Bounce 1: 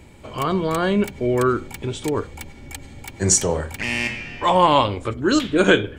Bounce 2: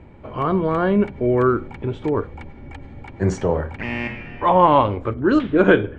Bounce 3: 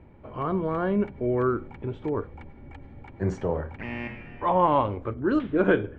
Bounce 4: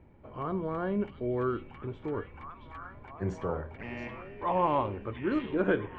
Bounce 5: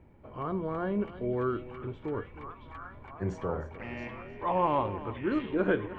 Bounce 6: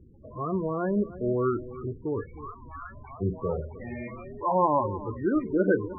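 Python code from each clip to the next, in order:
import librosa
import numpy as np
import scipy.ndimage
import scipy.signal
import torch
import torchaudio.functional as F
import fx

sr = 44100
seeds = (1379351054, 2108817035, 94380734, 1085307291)

y1 = scipy.signal.sosfilt(scipy.signal.butter(2, 1600.0, 'lowpass', fs=sr, output='sos'), x)
y1 = y1 * 10.0 ** (2.0 / 20.0)
y2 = fx.high_shelf(y1, sr, hz=4500.0, db=-11.5)
y2 = y2 * 10.0 ** (-7.0 / 20.0)
y3 = fx.echo_stepped(y2, sr, ms=675, hz=3500.0, octaves=-0.7, feedback_pct=70, wet_db=-0.5)
y3 = y3 * 10.0 ** (-6.0 / 20.0)
y4 = y3 + 10.0 ** (-15.0 / 20.0) * np.pad(y3, (int(309 * sr / 1000.0), 0))[:len(y3)]
y5 = fx.spec_topn(y4, sr, count=16)
y5 = y5 * 10.0 ** (4.5 / 20.0)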